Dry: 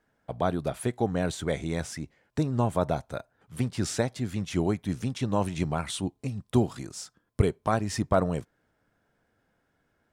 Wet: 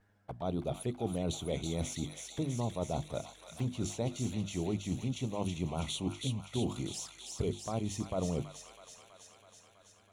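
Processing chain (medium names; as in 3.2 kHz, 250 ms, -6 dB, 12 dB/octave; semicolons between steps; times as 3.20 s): treble shelf 9.4 kHz -2.5 dB; hum notches 50/100/150/200/250/300/350 Hz; reverse; compression 6:1, threshold -33 dBFS, peak gain reduction 15 dB; reverse; hum 50 Hz, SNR 30 dB; touch-sensitive flanger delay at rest 11.4 ms, full sweep at -36.5 dBFS; on a send: feedback echo behind a high-pass 326 ms, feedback 72%, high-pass 1.5 kHz, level -3.5 dB; on the sum: trim +2.5 dB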